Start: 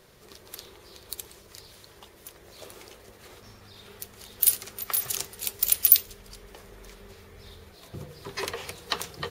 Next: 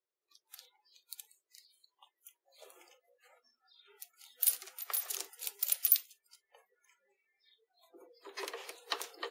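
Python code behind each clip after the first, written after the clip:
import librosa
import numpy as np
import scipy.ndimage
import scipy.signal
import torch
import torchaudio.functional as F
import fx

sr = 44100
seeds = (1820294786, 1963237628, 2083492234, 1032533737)

y = fx.noise_reduce_blind(x, sr, reduce_db=30)
y = scipy.signal.sosfilt(scipy.signal.ellip(4, 1.0, 50, 320.0, 'highpass', fs=sr, output='sos'), y)
y = fx.rider(y, sr, range_db=4, speed_s=2.0)
y = y * 10.0 ** (-8.0 / 20.0)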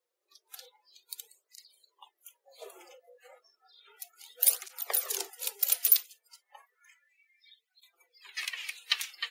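y = fx.filter_sweep_highpass(x, sr, from_hz=460.0, to_hz=2300.0, start_s=6.16, end_s=7.15, q=2.3)
y = fx.flanger_cancel(y, sr, hz=0.32, depth_ms=5.2)
y = y * 10.0 ** (8.5 / 20.0)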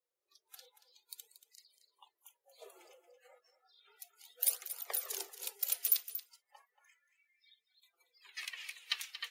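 y = x + 10.0 ** (-12.5 / 20.0) * np.pad(x, (int(231 * sr / 1000.0), 0))[:len(x)]
y = y * 10.0 ** (-7.5 / 20.0)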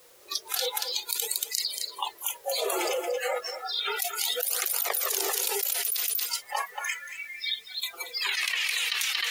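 y = fx.env_flatten(x, sr, amount_pct=100)
y = y * 10.0 ** (-3.5 / 20.0)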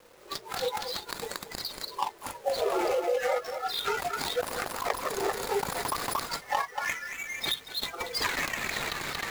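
y = scipy.ndimage.median_filter(x, 15, mode='constant')
y = fx.recorder_agc(y, sr, target_db=-21.5, rise_db_per_s=9.4, max_gain_db=30)
y = fx.hum_notches(y, sr, base_hz=60, count=2)
y = y * 10.0 ** (2.5 / 20.0)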